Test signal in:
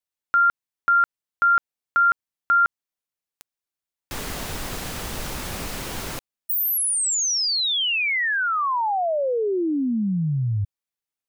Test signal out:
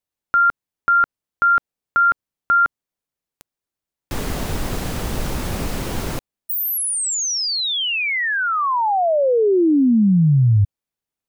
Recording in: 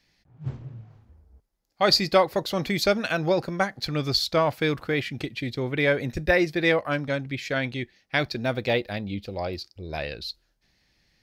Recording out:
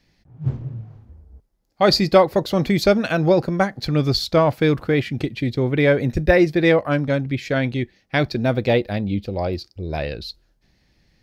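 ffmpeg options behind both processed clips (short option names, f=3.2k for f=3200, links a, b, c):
-af "tiltshelf=f=750:g=4.5,volume=5dB"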